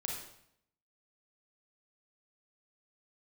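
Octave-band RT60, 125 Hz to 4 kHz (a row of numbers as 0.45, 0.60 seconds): 0.85, 0.80, 0.75, 0.70, 0.65, 0.65 seconds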